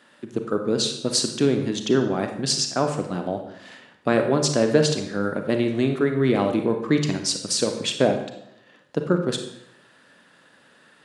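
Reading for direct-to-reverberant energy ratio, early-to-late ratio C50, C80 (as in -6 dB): 5.0 dB, 7.0 dB, 10.0 dB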